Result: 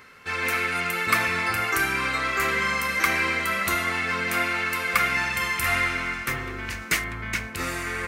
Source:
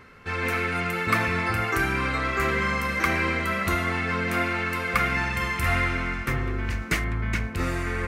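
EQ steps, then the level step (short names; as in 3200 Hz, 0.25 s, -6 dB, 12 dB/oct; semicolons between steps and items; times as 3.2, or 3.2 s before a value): tilt +2.5 dB/oct; 0.0 dB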